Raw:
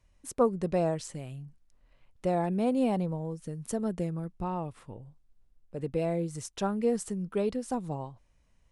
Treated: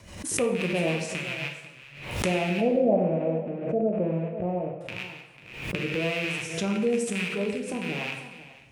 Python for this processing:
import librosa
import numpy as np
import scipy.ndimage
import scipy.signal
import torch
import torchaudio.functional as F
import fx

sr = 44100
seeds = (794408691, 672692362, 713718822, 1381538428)

y = fx.rattle_buzz(x, sr, strikes_db=-45.0, level_db=-21.0)
y = fx.recorder_agc(y, sr, target_db=-22.5, rise_db_per_s=27.0, max_gain_db=30)
y = scipy.signal.sosfilt(scipy.signal.butter(2, 110.0, 'highpass', fs=sr, output='sos'), y)
y = y + 10.0 ** (-15.0 / 20.0) * np.pad(y, (int(496 * sr / 1000.0), 0))[:len(y)]
y = fx.rotary_switch(y, sr, hz=7.5, then_hz=1.0, switch_at_s=1.28)
y = fx.lowpass_res(y, sr, hz=610.0, q=4.9, at=(2.61, 4.81))
y = fx.rev_plate(y, sr, seeds[0], rt60_s=0.88, hf_ratio=0.9, predelay_ms=0, drr_db=0.5)
y = fx.pre_swell(y, sr, db_per_s=71.0)